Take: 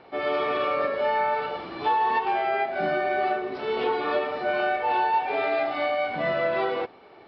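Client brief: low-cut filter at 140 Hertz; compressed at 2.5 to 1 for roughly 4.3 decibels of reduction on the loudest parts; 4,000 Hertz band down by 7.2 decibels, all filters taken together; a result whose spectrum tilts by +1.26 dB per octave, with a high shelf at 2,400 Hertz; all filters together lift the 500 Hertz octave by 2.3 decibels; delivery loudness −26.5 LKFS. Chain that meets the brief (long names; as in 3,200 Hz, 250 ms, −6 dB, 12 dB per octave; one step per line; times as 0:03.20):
high-pass filter 140 Hz
parametric band 500 Hz +3.5 dB
high-shelf EQ 2,400 Hz −7.5 dB
parametric band 4,000 Hz −3.5 dB
downward compressor 2.5 to 1, threshold −26 dBFS
level +2 dB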